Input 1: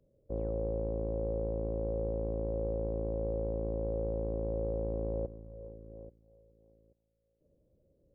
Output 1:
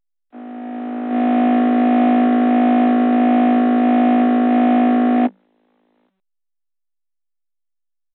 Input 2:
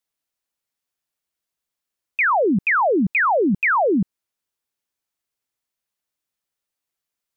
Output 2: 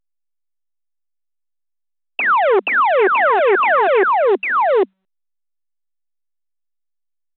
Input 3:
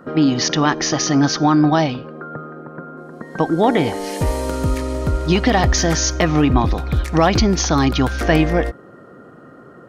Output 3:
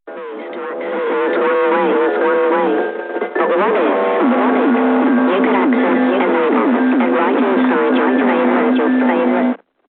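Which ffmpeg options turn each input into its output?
-filter_complex "[0:a]aecho=1:1:800:0.422,adynamicequalizer=threshold=0.0447:dfrequency=270:dqfactor=0.81:tfrequency=270:tqfactor=0.81:attack=5:release=100:ratio=0.375:range=2:mode=boostabove:tftype=bell,aresample=8000,asoftclip=type=tanh:threshold=0.158,aresample=44100,acrusher=bits=5:mix=0:aa=0.000001,agate=range=0.0126:threshold=0.0251:ratio=16:detection=peak,acrossover=split=910[s0][s1];[s0]asoftclip=type=hard:threshold=0.0398[s2];[s1]lowpass=1600[s3];[s2][s3]amix=inputs=2:normalize=0,equalizer=f=61:w=0.68:g=8,acrossover=split=320|950[s4][s5][s6];[s4]acompressor=threshold=0.0447:ratio=4[s7];[s5]acompressor=threshold=0.0251:ratio=4[s8];[s6]acompressor=threshold=0.0141:ratio=4[s9];[s7][s8][s9]amix=inputs=3:normalize=0,afreqshift=190,dynaudnorm=f=160:g=13:m=6.31" -ar 8000 -c:a pcm_alaw

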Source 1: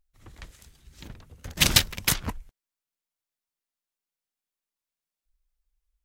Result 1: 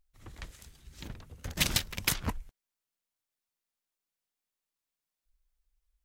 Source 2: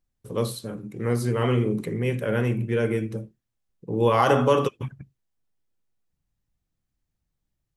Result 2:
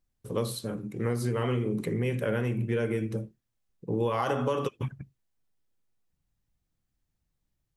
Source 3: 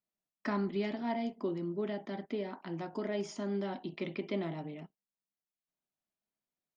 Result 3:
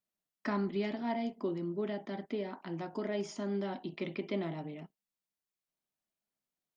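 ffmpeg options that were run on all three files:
-af "acompressor=threshold=0.0631:ratio=10"

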